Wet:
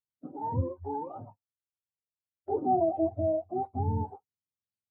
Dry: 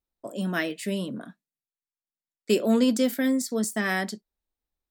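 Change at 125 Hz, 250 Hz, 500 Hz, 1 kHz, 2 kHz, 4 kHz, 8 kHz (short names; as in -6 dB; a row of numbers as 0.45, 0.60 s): n/a, -10.5 dB, -2.5 dB, +6.0 dB, under -40 dB, under -40 dB, under -40 dB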